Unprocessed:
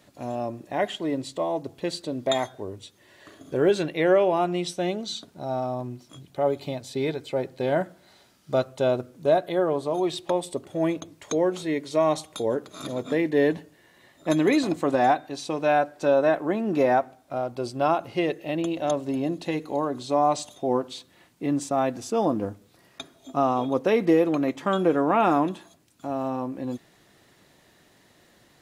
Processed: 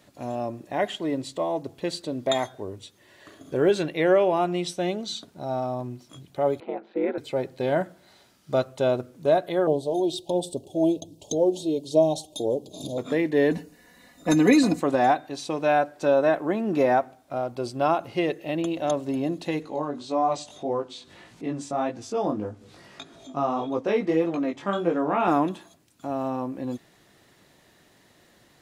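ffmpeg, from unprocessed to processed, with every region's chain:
-filter_complex "[0:a]asettb=1/sr,asplit=3[s0][s1][s2];[s0]atrim=end=6.604[s3];[s1]atrim=start=6.6:end=7.18,asetpts=PTS-STARTPTS,afade=t=in:d=0.004:c=qsin,afade=t=out:st=0.576:d=0.004:c=qsin,aeval=exprs='val(0)*sin(2*PI*89*n/s)':c=same,highpass=f=240:w=0.5412,highpass=f=240:w=1.3066,equalizer=f=330:t=q:w=4:g=6,equalizer=f=480:t=q:w=4:g=5,equalizer=f=810:t=q:w=4:g=5,equalizer=f=1400:t=q:w=4:g=9,lowpass=f=2300:w=0.5412,lowpass=f=2300:w=1.3066[s4];[s2]atrim=start=7.176[s5];[s3][s4]acrossfade=d=0.004:c1=hsin:c2=qsin[s6];[s6][s5]acrossfade=d=0.004:c1=qsin:c2=hsin,asettb=1/sr,asplit=3[s7][s8][s9];[s7]atrim=end=9.674[s10];[s8]atrim=start=9.67:end=12.98,asetpts=PTS-STARTPTS,afade=t=in:d=0.004:c=qsin,afade=t=out:st=3.306:d=0.004:c=qsin,aphaser=in_gain=1:out_gain=1:delay=3.3:decay=0.38:speed=1.3:type=sinusoidal,asuperstop=centerf=1600:order=8:qfactor=0.71[s11];[s9]atrim=start=12.976[s12];[s10][s11]acrossfade=d=0.004:c1=hsin:c2=qsin[s13];[s13][s12]acrossfade=d=0.004:c1=qsin:c2=hsin,asettb=1/sr,asplit=3[s14][s15][s16];[s14]atrim=end=13.514[s17];[s15]atrim=start=13.51:end=14.8,asetpts=PTS-STARTPTS,afade=t=in:d=0.004:c=qsin,afade=t=out:st=1.286:d=0.004:c=qsin,bass=f=250:g=6,treble=f=4000:g=4,bandreject=f=3300:w=6.2,aecho=1:1:4.1:0.73,atrim=end_sample=56889[s18];[s16]atrim=start=14.796[s19];[s17][s18]acrossfade=d=0.004:c1=hsin:c2=qsin[s20];[s20][s19]acrossfade=d=0.004:c1=qsin:c2=hsin,asettb=1/sr,asplit=3[s21][s22][s23];[s21]atrim=end=19.624[s24];[s22]atrim=start=19.62:end=25.28,asetpts=PTS-STARTPTS,afade=t=in:d=0.004:c=qsin,afade=t=out:st=5.656:d=0.004:c=qsin,lowpass=7700,flanger=delay=17.5:depth=3.2:speed=1.7,acompressor=mode=upward:threshold=0.0141:ratio=2.5:attack=3.2:release=140:knee=2.83:detection=peak[s25];[s23]atrim=start=25.276[s26];[s24][s25]acrossfade=d=0.004:c1=hsin:c2=qsin[s27];[s27][s26]acrossfade=d=0.004:c1=qsin:c2=hsin"

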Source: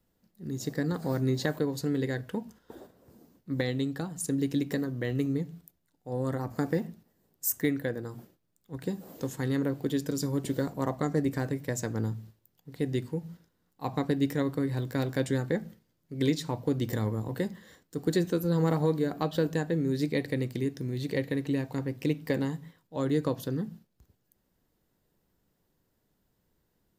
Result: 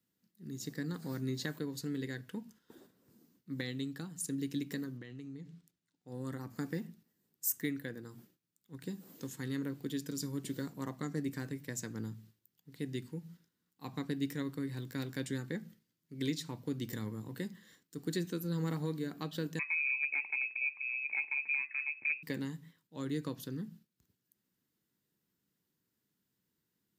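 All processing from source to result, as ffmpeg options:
-filter_complex "[0:a]asettb=1/sr,asplit=3[s0][s1][s2];[s0]atrim=end=4.974[s3];[s1]atrim=start=4.97:end=6.08,asetpts=PTS-STARTPTS,afade=t=in:d=0.004:c=qsin,afade=t=out:st=1.106:d=0.004:c=qsin,lowpass=7200,acompressor=threshold=0.0224:ratio=12:attack=3.2:release=140:knee=1:detection=peak[s4];[s2]atrim=start=6.076[s5];[s3][s4]acrossfade=d=0.004:c1=hsin:c2=qsin[s6];[s6][s5]acrossfade=d=0.004:c1=qsin:c2=hsin,asettb=1/sr,asplit=3[s7][s8][s9];[s7]atrim=end=19.594[s10];[s8]atrim=start=19.59:end=22.23,asetpts=PTS-STARTPTS,afade=t=in:d=0.004:c=qsin,afade=t=out:st=2.636:d=0.004:c=qsin,asoftclip=type=hard:threshold=0.0841,lowpass=f=2300:t=q:w=0.5098,lowpass=f=2300:t=q:w=0.6013,lowpass=f=2300:t=q:w=0.9,lowpass=f=2300:t=q:w=2.563,afreqshift=-2700[s11];[s9]atrim=start=22.226[s12];[s10][s11]acrossfade=d=0.004:c1=hsin:c2=qsin[s13];[s13][s12]acrossfade=d=0.004:c1=qsin:c2=hsin,highpass=160,equalizer=f=650:w=0.95:g=-13.5,volume=0.631"

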